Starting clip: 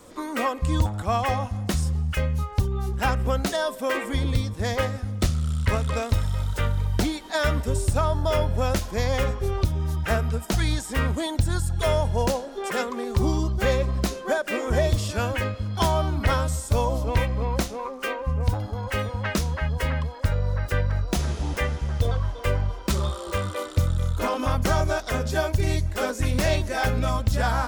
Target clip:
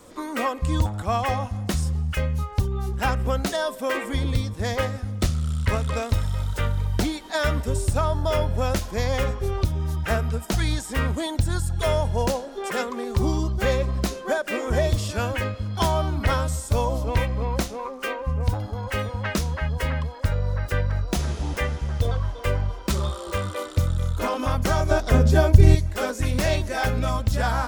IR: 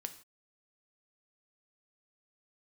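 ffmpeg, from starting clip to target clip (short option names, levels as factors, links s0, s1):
-filter_complex "[0:a]asettb=1/sr,asplit=3[s0][s1][s2];[s0]atrim=end=24.914[s3];[s1]atrim=start=24.91:end=25.75,asetpts=PTS-STARTPTS,afade=t=in:d=0.004:c=qsin,afade=t=out:st=0.836:d=0.004:c=qsin,lowshelf=f=490:g=11.5[s4];[s2]atrim=start=25.746[s5];[s3][s4]acrossfade=d=0.004:c1=hsin:c2=qsin[s6];[s6][s5]acrossfade=d=0.004:c1=qsin:c2=hsin"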